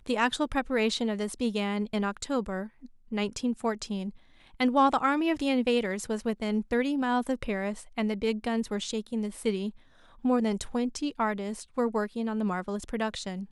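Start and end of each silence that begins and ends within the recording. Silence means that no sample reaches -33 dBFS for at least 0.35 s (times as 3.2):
2.64–3.12
4.1–4.6
9.7–10.25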